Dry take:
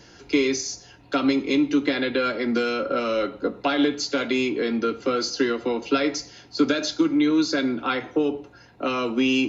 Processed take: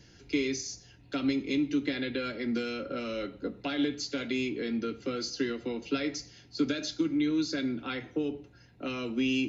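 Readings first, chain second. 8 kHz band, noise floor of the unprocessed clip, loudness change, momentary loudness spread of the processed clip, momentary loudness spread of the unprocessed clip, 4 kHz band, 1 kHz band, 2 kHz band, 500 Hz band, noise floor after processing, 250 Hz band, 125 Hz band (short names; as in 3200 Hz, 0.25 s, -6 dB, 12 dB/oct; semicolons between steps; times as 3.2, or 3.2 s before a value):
n/a, -51 dBFS, -8.5 dB, 8 LU, 6 LU, -8.0 dB, -14.0 dB, -9.0 dB, -10.5 dB, -57 dBFS, -7.5 dB, -2.5 dB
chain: EQ curve 130 Hz 0 dB, 1100 Hz -15 dB, 1900 Hz -6 dB; gain -2 dB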